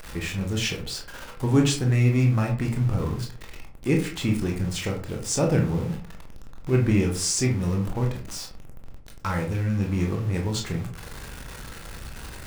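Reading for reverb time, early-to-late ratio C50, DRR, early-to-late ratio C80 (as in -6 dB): 0.45 s, 8.5 dB, 1.0 dB, 13.0 dB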